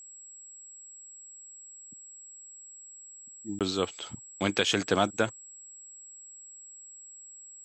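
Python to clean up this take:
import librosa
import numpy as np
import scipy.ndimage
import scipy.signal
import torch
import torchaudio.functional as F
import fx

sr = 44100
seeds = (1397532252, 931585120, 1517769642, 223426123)

y = fx.notch(x, sr, hz=7700.0, q=30.0)
y = fx.fix_interpolate(y, sr, at_s=(3.59,), length_ms=17.0)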